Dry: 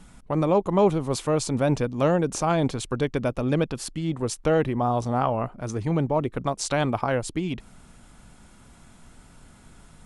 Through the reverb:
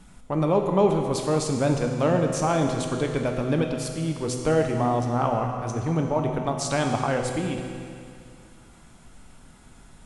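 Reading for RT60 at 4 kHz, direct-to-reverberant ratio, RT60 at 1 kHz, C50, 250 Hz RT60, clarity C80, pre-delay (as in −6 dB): 2.3 s, 2.5 dB, 2.4 s, 4.5 dB, 2.4 s, 5.0 dB, 8 ms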